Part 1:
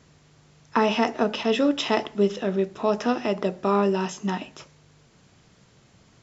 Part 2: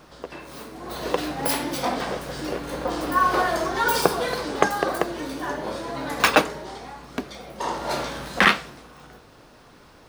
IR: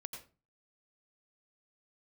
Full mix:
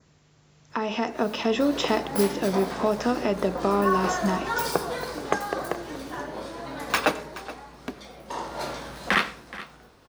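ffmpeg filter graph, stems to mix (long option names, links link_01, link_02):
-filter_complex "[0:a]acompressor=threshold=-31dB:ratio=2,volume=-4dB[link_01];[1:a]adelay=700,volume=-17dB,asplit=3[link_02][link_03][link_04];[link_03]volume=-9dB[link_05];[link_04]volume=-14.5dB[link_06];[2:a]atrim=start_sample=2205[link_07];[link_05][link_07]afir=irnorm=-1:irlink=0[link_08];[link_06]aecho=0:1:424:1[link_09];[link_01][link_02][link_08][link_09]amix=inputs=4:normalize=0,adynamicequalizer=threshold=0.00141:dfrequency=3000:dqfactor=2.3:tfrequency=3000:tqfactor=2.3:attack=5:release=100:ratio=0.375:range=2:mode=cutabove:tftype=bell,dynaudnorm=framelen=150:gausssize=13:maxgain=10dB"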